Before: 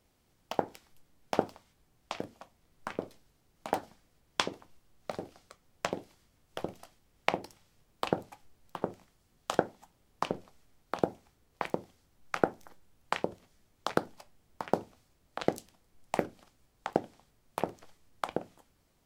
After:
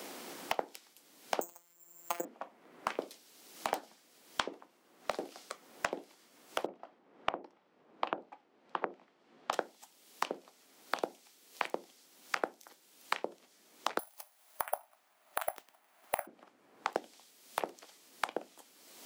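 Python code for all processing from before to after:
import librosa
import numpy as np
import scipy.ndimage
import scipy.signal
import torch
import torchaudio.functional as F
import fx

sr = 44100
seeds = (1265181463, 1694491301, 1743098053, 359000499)

y = fx.chain(x, sr, fx.robotise(hz=172.0),
    fx.resample_bad(factor=6, down='filtered', up='zero_stuff'), at=(1.41, 2.25))
y = fx.chain(y, sr, fx.lowpass(hz=1200.0, slope=12),
    fx.doppler_dist(depth_ms=0.61), at=(6.66, 9.53))
y = fx.chain(y, sr, fx.brickwall_highpass(low_hz=580.0),
    fx.resample_bad(factor=4, down='none', up='zero_stuff'), at=(13.99, 16.27))
y = scipy.signal.sosfilt(scipy.signal.butter(4, 250.0, 'highpass', fs=sr, output='sos'), y)
y = fx.band_squash(y, sr, depth_pct=100)
y = y * librosa.db_to_amplitude(-2.5)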